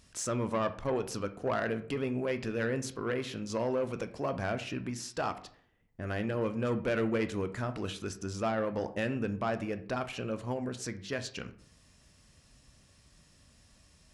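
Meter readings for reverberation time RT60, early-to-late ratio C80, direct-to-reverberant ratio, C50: 0.55 s, 18.0 dB, 9.5 dB, 14.0 dB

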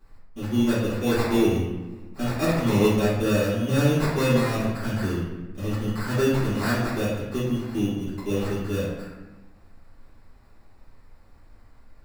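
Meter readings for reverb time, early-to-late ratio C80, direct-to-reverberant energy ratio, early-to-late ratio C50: 1.1 s, 3.0 dB, -13.0 dB, 0.0 dB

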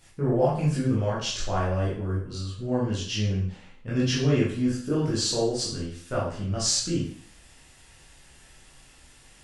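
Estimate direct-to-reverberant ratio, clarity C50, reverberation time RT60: -7.5 dB, 2.0 dB, 0.55 s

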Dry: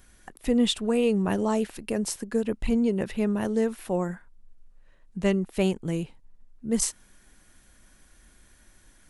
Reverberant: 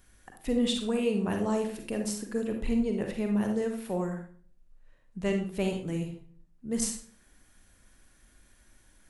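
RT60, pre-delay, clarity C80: 0.45 s, 38 ms, 10.0 dB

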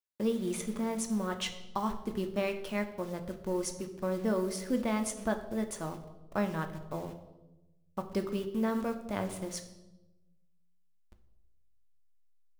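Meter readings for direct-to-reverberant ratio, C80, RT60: 6.0 dB, 13.0 dB, 1.0 s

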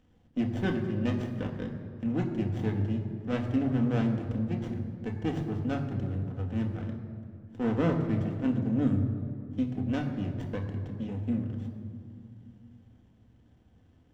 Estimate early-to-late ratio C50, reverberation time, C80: 7.0 dB, 2.3 s, 8.0 dB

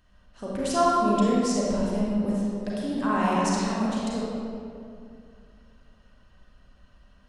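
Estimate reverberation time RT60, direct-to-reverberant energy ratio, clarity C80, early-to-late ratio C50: 2.4 s, -6.5 dB, -1.5 dB, -4.0 dB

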